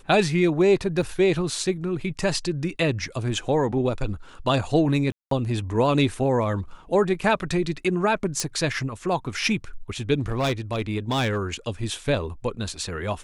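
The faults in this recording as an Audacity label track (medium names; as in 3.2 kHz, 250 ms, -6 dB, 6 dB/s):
1.020000	1.020000	dropout 5 ms
5.120000	5.310000	dropout 193 ms
8.400000	8.400000	pop -9 dBFS
10.200000	11.370000	clipped -19.5 dBFS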